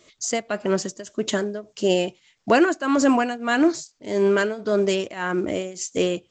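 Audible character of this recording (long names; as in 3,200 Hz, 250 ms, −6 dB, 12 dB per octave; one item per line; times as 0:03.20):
tremolo triangle 1.7 Hz, depth 90%
A-law companding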